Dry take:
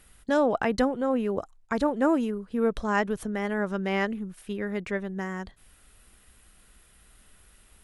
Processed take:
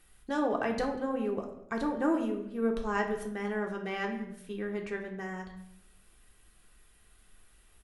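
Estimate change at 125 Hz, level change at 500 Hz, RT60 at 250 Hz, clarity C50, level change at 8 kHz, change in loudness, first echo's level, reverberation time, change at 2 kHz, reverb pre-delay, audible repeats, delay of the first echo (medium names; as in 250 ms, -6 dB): -7.0 dB, -5.5 dB, 1.0 s, 8.0 dB, -6.0 dB, -5.5 dB, -22.0 dB, 0.75 s, -5.0 dB, 3 ms, 1, 193 ms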